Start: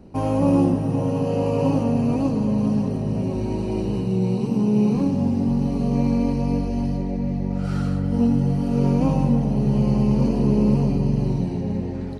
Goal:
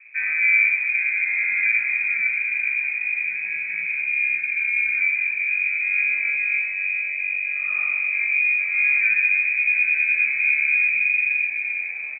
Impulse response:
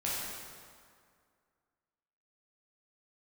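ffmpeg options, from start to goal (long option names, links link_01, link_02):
-filter_complex "[0:a]aecho=1:1:6.6:0.57,lowpass=frequency=2200:width_type=q:width=0.5098,lowpass=frequency=2200:width_type=q:width=0.6013,lowpass=frequency=2200:width_type=q:width=0.9,lowpass=frequency=2200:width_type=q:width=2.563,afreqshift=-2600,acrossover=split=1200[link_01][link_02];[link_01]adelay=50[link_03];[link_03][link_02]amix=inputs=2:normalize=0,volume=-2dB"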